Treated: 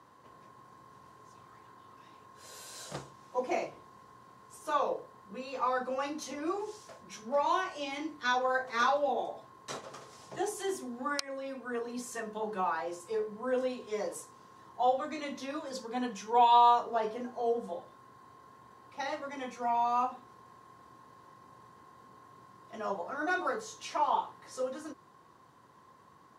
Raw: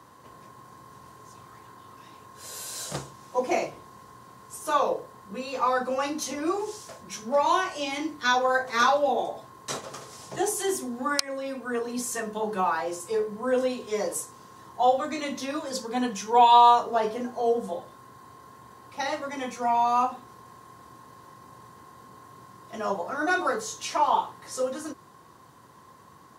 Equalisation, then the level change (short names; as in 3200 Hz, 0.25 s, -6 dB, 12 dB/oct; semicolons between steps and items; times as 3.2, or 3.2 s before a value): low shelf 170 Hz -4.5 dB; high shelf 6700 Hz -10.5 dB; -6.0 dB